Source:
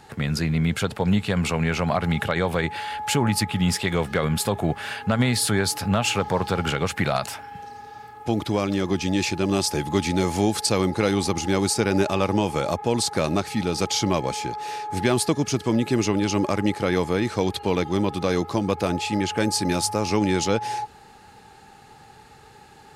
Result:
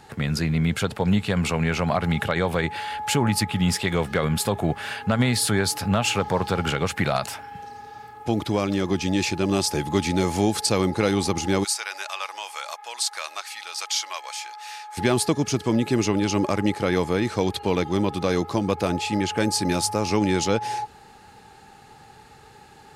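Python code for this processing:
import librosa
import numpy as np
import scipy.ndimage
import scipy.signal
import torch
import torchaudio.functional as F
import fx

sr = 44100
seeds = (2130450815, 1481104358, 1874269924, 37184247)

y = fx.bessel_highpass(x, sr, hz=1300.0, order=4, at=(11.63, 14.97), fade=0.02)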